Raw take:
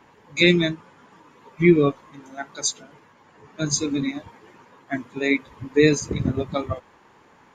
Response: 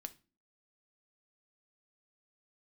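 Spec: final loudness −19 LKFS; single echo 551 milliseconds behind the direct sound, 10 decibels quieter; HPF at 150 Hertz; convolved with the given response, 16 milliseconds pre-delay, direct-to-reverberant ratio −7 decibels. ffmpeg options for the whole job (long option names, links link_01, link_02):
-filter_complex "[0:a]highpass=150,aecho=1:1:551:0.316,asplit=2[link_01][link_02];[1:a]atrim=start_sample=2205,adelay=16[link_03];[link_02][link_03]afir=irnorm=-1:irlink=0,volume=11dB[link_04];[link_01][link_04]amix=inputs=2:normalize=0,volume=-3dB"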